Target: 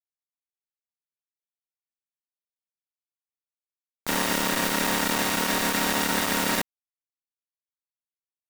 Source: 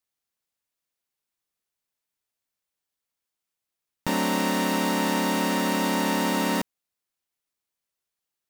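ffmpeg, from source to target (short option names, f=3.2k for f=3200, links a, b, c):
-af "highshelf=f=6.4k:g=8,alimiter=limit=-15dB:level=0:latency=1:release=32,acrusher=bits=3:mix=0:aa=0.000001"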